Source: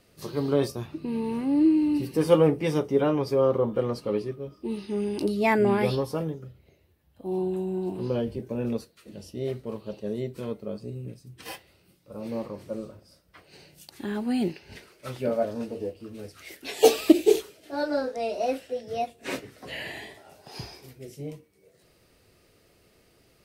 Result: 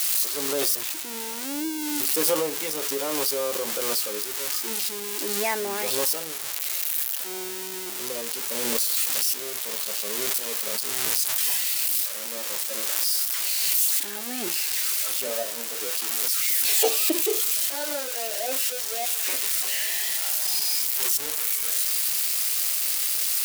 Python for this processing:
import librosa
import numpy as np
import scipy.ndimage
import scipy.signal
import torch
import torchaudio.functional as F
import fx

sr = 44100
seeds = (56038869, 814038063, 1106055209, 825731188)

y = x + 0.5 * 10.0 ** (-13.5 / 20.0) * np.diff(np.sign(x), prepend=np.sign(x[:1]))
y = scipy.signal.sosfilt(scipy.signal.bessel(2, 570.0, 'highpass', norm='mag', fs=sr, output='sos'), y)
y = fx.pre_swell(y, sr, db_per_s=20.0)
y = F.gain(torch.from_numpy(y), -3.0).numpy()